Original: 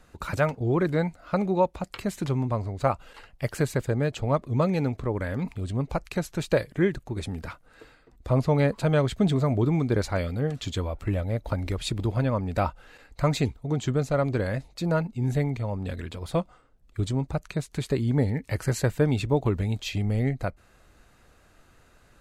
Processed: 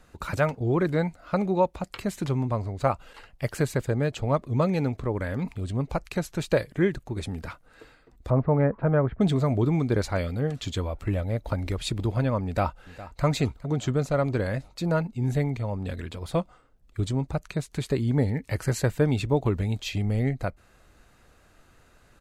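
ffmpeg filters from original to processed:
-filter_complex "[0:a]asettb=1/sr,asplit=3[a][b][c];[a]atrim=end=8.304[d];[b]atrim=start=8.3:end=9.21,asetpts=PTS-STARTPTS,afade=t=in:d=0.004:c=qsin,afade=t=out:st=0.906:d=0.004:c=qsin,lowpass=f=1.7k:w=0.5412,lowpass=f=1.7k:w=1.3066[e];[c]atrim=start=9.206[f];[d][e]acrossfade=d=0.004:c1=hsin:c2=qsin[g];[g][f]acrossfade=d=0.004:c1=qsin:c2=hsin,asplit=2[h][i];[i]afade=t=in:st=12.45:d=0.01,afade=t=out:st=13.24:d=0.01,aecho=0:1:410|820|1230|1640|2050:0.149624|0.082293|0.0452611|0.0248936|0.0136915[j];[h][j]amix=inputs=2:normalize=0"

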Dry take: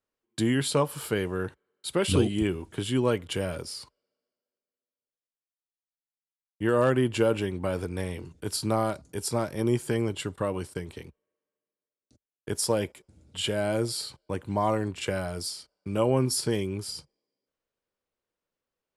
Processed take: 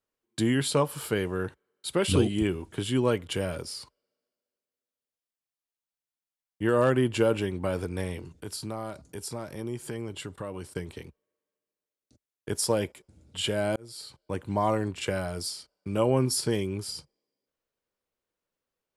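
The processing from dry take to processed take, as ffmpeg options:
-filter_complex "[0:a]asettb=1/sr,asplit=3[a][b][c];[a]atrim=end=8.194[d];[b]atrim=start=8.19:end=10.68,asetpts=PTS-STARTPTS,afade=t=in:d=0.004:c=qsin,afade=t=out:st=2.486:d=0.004:c=qsin,acompressor=threshold=-37dB:ratio=2:attack=3.2:release=140:knee=1:detection=peak[e];[c]atrim=start=10.676[f];[d][e]acrossfade=d=0.004:c1=hsin:c2=qsin[g];[g][f]acrossfade=d=0.004:c1=qsin:c2=hsin,asplit=2[h][i];[h]atrim=end=13.76,asetpts=PTS-STARTPTS,afade=t=out:st=13.756:d=0.004:c=hsin[j];[i]atrim=start=13.76,asetpts=PTS-STARTPTS,afade=t=in:d=0.62[k];[j][k]concat=n=2:v=0:a=1"

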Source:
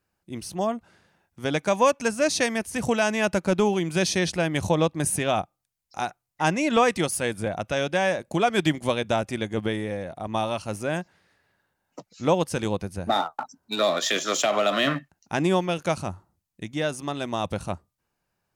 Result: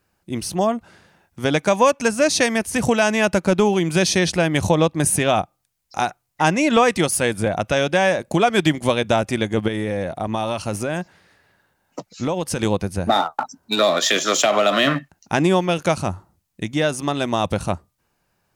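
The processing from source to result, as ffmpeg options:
-filter_complex "[0:a]asettb=1/sr,asplit=3[a][b][c];[a]atrim=end=9.684[d];[b]atrim=start=9.68:end=12.63,asetpts=PTS-STARTPTS,afade=t=in:d=0.004:c=qsin,afade=t=out:st=2.946:d=0.004:c=qsin,acompressor=threshold=-27dB:ratio=6:attack=3.2:release=140:knee=1:detection=peak[e];[c]atrim=start=12.626[f];[d][e]acrossfade=d=0.004:c1=hsin:c2=qsin[g];[g][f]acrossfade=d=0.004:c1=qsin:c2=hsin,acompressor=threshold=-28dB:ratio=1.5,volume=9dB"

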